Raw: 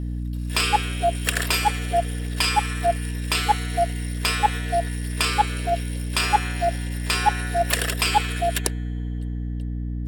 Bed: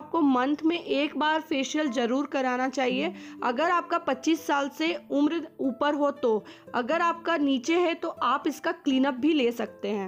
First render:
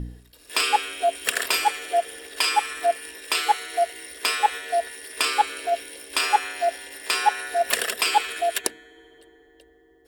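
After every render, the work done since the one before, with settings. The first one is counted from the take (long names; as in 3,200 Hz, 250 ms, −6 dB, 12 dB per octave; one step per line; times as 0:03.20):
hum removal 60 Hz, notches 5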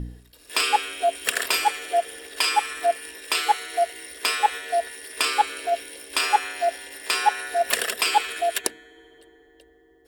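no processing that can be heard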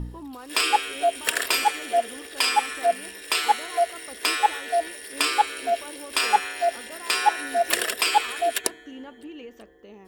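mix in bed −17 dB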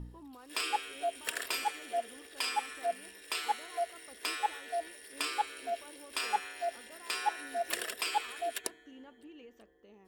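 level −12 dB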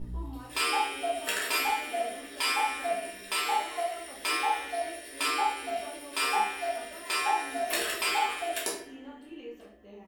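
double-tracking delay 15 ms −7.5 dB
rectangular room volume 100 cubic metres, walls mixed, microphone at 1.5 metres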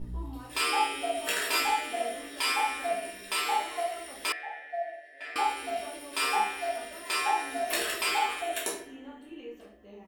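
0:00.75–0:02.41: double-tracking delay 21 ms −5.5 dB
0:04.32–0:05.36: pair of resonant band-passes 1,100 Hz, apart 1.4 octaves
0:08.41–0:09.57: notch filter 4,900 Hz, Q 5.2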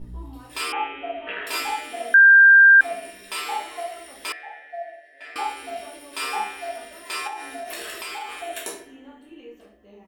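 0:00.72–0:01.47: Butterworth low-pass 3,000 Hz 48 dB per octave
0:02.14–0:02.81: beep over 1,590 Hz −7.5 dBFS
0:07.27–0:08.39: downward compressor 4 to 1, threshold −30 dBFS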